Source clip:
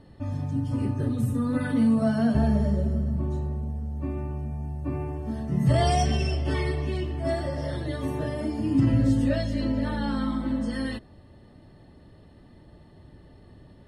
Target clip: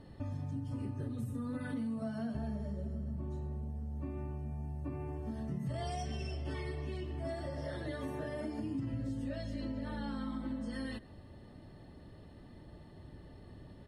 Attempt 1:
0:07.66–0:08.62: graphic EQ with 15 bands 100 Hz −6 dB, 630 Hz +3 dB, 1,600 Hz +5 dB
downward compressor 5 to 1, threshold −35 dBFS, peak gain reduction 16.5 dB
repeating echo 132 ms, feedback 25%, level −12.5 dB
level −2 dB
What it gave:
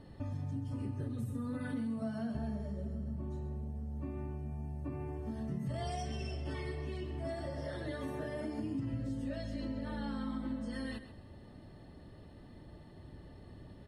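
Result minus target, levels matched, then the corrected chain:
echo-to-direct +10 dB
0:07.66–0:08.62: graphic EQ with 15 bands 100 Hz −6 dB, 630 Hz +3 dB, 1,600 Hz +5 dB
downward compressor 5 to 1, threshold −35 dBFS, peak gain reduction 16.5 dB
repeating echo 132 ms, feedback 25%, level −22.5 dB
level −2 dB

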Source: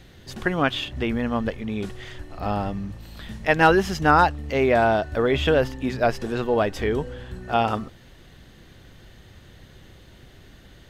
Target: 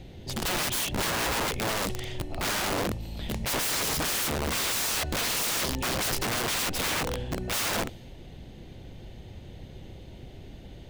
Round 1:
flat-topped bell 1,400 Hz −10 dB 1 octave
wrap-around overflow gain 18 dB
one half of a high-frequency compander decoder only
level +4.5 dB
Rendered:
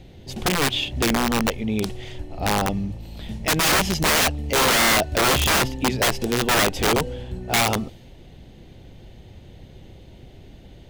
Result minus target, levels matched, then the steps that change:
wrap-around overflow: distortion −13 dB
change: wrap-around overflow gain 28 dB

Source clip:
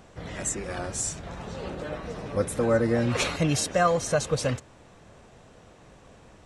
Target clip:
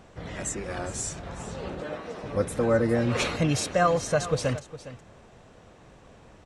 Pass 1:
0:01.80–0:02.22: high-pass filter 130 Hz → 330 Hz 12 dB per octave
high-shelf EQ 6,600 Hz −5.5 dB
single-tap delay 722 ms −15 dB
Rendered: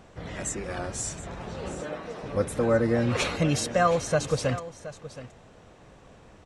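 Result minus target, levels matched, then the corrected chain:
echo 311 ms late
0:01.80–0:02.22: high-pass filter 130 Hz → 330 Hz 12 dB per octave
high-shelf EQ 6,600 Hz −5.5 dB
single-tap delay 411 ms −15 dB

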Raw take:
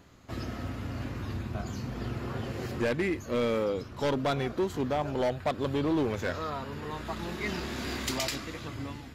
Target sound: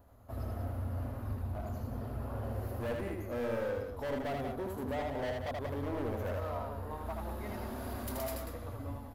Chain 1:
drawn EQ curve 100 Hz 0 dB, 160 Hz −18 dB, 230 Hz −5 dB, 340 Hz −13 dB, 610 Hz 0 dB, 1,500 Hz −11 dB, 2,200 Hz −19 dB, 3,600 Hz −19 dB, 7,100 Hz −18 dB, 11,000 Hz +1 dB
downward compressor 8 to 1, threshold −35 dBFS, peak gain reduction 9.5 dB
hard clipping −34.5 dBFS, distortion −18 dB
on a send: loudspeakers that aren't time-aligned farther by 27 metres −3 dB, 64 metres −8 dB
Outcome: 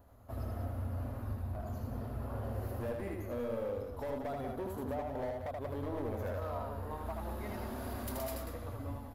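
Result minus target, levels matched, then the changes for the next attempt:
downward compressor: peak gain reduction +9.5 dB
remove: downward compressor 8 to 1, threshold −35 dBFS, peak gain reduction 9.5 dB

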